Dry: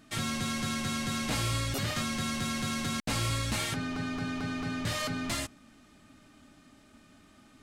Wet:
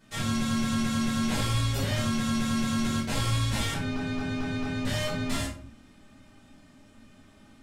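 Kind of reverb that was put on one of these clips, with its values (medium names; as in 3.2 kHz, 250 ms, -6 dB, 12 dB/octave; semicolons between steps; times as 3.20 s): simulated room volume 390 m³, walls furnished, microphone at 4.9 m; trim -6.5 dB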